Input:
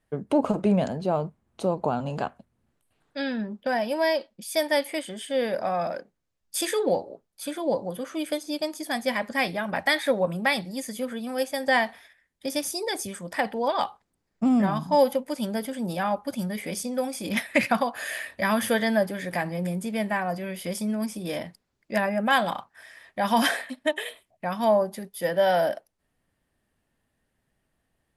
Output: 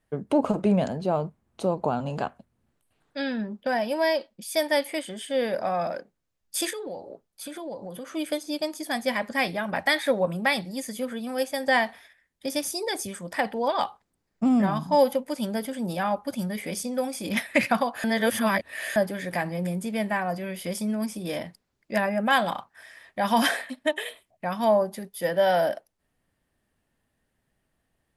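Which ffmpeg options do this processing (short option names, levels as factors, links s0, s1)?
-filter_complex "[0:a]asettb=1/sr,asplit=3[s0][s1][s2];[s0]atrim=end=6.704[s3];[s1]atrim=start=6.7:end=8.12,asetpts=PTS-STARTPTS,afade=t=in:d=0.004:c=qsin,afade=t=out:st=1.416:d=0.004:c=qsin,acompressor=threshold=0.02:ratio=4:attack=3.2:release=140:knee=1:detection=peak[s4];[s2]atrim=start=8.116[s5];[s3][s4]acrossfade=d=0.004:c1=hsin:c2=qsin[s6];[s6][s5]acrossfade=d=0.004:c1=qsin:c2=hsin,asplit=3[s7][s8][s9];[s7]atrim=end=18.042[s10];[s8]atrim=start=18.038:end=18.962,asetpts=PTS-STARTPTS,areverse[s11];[s9]atrim=start=18.958[s12];[s10][s11]acrossfade=d=0.004:c1=hsin:c2=hsin[s13];[s13][s12]acrossfade=d=0.004:c1=hsin:c2=hsin"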